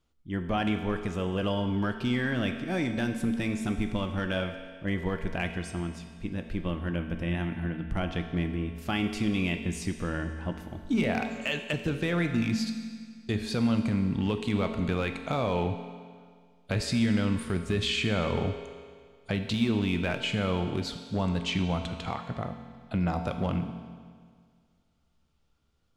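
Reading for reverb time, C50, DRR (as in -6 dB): 1.9 s, 7.5 dB, 6.0 dB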